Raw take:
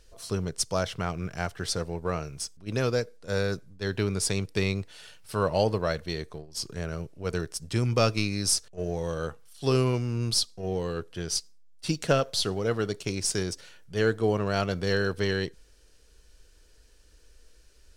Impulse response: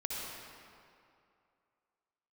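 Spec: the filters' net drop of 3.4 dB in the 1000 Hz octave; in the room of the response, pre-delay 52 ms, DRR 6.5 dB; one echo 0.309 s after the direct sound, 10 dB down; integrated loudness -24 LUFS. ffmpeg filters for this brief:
-filter_complex "[0:a]equalizer=f=1k:t=o:g=-5,aecho=1:1:309:0.316,asplit=2[a][b];[1:a]atrim=start_sample=2205,adelay=52[c];[b][c]afir=irnorm=-1:irlink=0,volume=-9.5dB[d];[a][d]amix=inputs=2:normalize=0,volume=4.5dB"

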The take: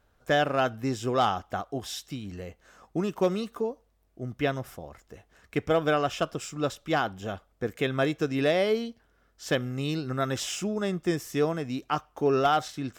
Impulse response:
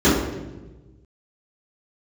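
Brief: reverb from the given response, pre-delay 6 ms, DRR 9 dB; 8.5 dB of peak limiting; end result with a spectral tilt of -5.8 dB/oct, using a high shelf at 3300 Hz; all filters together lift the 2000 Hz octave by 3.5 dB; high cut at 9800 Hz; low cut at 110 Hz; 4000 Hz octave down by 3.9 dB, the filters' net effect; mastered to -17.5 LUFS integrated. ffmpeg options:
-filter_complex "[0:a]highpass=110,lowpass=9.8k,equalizer=f=2k:t=o:g=7.5,highshelf=f=3.3k:g=-7,equalizer=f=4k:t=o:g=-4,alimiter=limit=-18.5dB:level=0:latency=1,asplit=2[a][b];[1:a]atrim=start_sample=2205,adelay=6[c];[b][c]afir=irnorm=-1:irlink=0,volume=-32.5dB[d];[a][d]amix=inputs=2:normalize=0,volume=11.5dB"

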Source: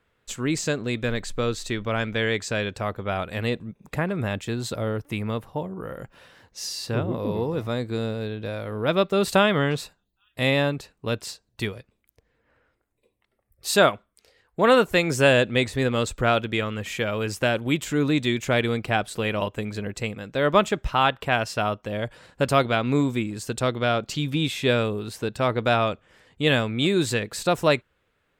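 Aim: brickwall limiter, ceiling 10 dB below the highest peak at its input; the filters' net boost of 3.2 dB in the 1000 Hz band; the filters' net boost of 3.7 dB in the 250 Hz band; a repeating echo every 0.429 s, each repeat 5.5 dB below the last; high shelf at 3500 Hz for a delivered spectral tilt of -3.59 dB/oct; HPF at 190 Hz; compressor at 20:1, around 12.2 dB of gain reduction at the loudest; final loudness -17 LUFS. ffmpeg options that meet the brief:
-af "highpass=190,equalizer=f=250:t=o:g=6,equalizer=f=1k:t=o:g=3.5,highshelf=f=3.5k:g=6,acompressor=threshold=-22dB:ratio=20,alimiter=limit=-18dB:level=0:latency=1,aecho=1:1:429|858|1287|1716|2145|2574|3003:0.531|0.281|0.149|0.079|0.0419|0.0222|0.0118,volume=12.5dB"

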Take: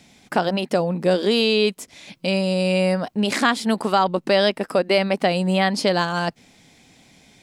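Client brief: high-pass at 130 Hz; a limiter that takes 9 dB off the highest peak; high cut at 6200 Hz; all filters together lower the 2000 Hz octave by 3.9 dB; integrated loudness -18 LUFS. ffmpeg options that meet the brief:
-af "highpass=130,lowpass=6.2k,equalizer=f=2k:t=o:g=-5,volume=7dB,alimiter=limit=-7.5dB:level=0:latency=1"

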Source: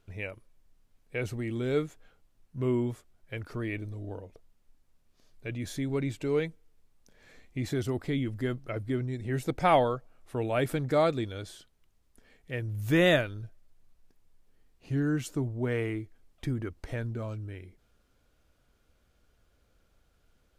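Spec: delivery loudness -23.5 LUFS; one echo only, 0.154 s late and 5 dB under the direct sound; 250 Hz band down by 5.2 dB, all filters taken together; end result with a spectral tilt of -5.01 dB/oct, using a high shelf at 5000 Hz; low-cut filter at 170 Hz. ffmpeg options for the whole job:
-af "highpass=170,equalizer=f=250:t=o:g=-6,highshelf=f=5k:g=4,aecho=1:1:154:0.562,volume=9dB"

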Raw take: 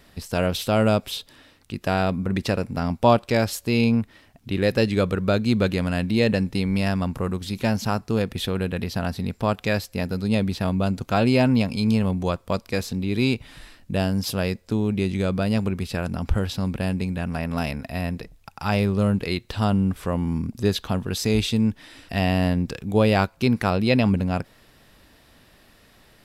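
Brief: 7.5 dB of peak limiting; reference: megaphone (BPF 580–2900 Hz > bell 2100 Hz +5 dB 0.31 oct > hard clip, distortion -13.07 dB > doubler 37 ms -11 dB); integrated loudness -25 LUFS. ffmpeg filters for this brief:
-filter_complex "[0:a]alimiter=limit=-13dB:level=0:latency=1,highpass=580,lowpass=2.9k,equalizer=f=2.1k:t=o:w=0.31:g=5,asoftclip=type=hard:threshold=-22dB,asplit=2[a][b];[b]adelay=37,volume=-11dB[c];[a][c]amix=inputs=2:normalize=0,volume=8dB"

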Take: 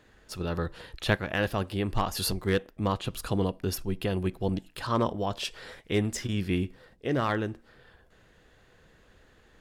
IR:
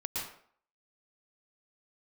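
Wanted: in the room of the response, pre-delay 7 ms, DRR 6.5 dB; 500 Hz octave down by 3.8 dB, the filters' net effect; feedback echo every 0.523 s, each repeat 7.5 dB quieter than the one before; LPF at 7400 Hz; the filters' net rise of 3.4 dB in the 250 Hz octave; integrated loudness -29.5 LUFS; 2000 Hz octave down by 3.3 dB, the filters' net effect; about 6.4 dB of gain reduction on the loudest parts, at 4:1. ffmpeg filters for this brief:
-filter_complex "[0:a]lowpass=7.4k,equalizer=f=250:t=o:g=6.5,equalizer=f=500:t=o:g=-7,equalizer=f=2k:t=o:g=-4,acompressor=threshold=-28dB:ratio=4,aecho=1:1:523|1046|1569|2092|2615:0.422|0.177|0.0744|0.0312|0.0131,asplit=2[a][b];[1:a]atrim=start_sample=2205,adelay=7[c];[b][c]afir=irnorm=-1:irlink=0,volume=-10dB[d];[a][d]amix=inputs=2:normalize=0,volume=3.5dB"

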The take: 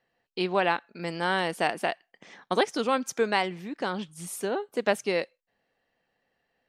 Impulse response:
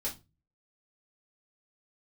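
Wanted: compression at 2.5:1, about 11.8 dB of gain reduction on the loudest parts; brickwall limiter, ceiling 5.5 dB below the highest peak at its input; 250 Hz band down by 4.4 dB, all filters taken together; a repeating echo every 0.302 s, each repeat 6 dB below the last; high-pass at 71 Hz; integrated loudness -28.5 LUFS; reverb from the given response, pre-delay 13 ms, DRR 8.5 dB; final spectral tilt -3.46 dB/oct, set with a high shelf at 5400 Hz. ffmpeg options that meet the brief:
-filter_complex "[0:a]highpass=71,equalizer=f=250:t=o:g=-6.5,highshelf=f=5.4k:g=8.5,acompressor=threshold=-38dB:ratio=2.5,alimiter=level_in=1.5dB:limit=-24dB:level=0:latency=1,volume=-1.5dB,aecho=1:1:302|604|906|1208|1510|1812:0.501|0.251|0.125|0.0626|0.0313|0.0157,asplit=2[a][b];[1:a]atrim=start_sample=2205,adelay=13[c];[b][c]afir=irnorm=-1:irlink=0,volume=-10.5dB[d];[a][d]amix=inputs=2:normalize=0,volume=9.5dB"

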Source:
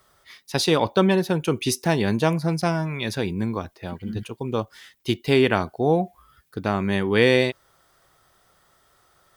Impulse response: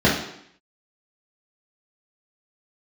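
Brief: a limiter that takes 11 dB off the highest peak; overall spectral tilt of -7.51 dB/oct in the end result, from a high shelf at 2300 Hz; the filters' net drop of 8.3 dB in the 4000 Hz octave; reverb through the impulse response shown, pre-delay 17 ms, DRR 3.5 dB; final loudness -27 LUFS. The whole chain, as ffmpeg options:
-filter_complex "[0:a]highshelf=f=2.3k:g=-5.5,equalizer=f=4k:t=o:g=-5.5,alimiter=limit=-16.5dB:level=0:latency=1,asplit=2[a][b];[1:a]atrim=start_sample=2205,adelay=17[c];[b][c]afir=irnorm=-1:irlink=0,volume=-24.5dB[d];[a][d]amix=inputs=2:normalize=0,volume=-4.5dB"

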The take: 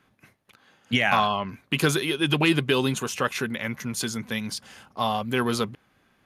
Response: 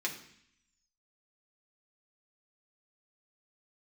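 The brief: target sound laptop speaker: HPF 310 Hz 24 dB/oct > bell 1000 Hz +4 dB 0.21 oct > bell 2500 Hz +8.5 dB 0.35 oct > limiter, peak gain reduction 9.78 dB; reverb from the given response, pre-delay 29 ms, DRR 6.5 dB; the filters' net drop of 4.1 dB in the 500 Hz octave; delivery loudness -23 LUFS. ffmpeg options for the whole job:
-filter_complex "[0:a]equalizer=f=500:t=o:g=-5,asplit=2[a][b];[1:a]atrim=start_sample=2205,adelay=29[c];[b][c]afir=irnorm=-1:irlink=0,volume=-10.5dB[d];[a][d]amix=inputs=2:normalize=0,highpass=f=310:w=0.5412,highpass=f=310:w=1.3066,equalizer=f=1k:t=o:w=0.21:g=4,equalizer=f=2.5k:t=o:w=0.35:g=8.5,volume=3dB,alimiter=limit=-11dB:level=0:latency=1"

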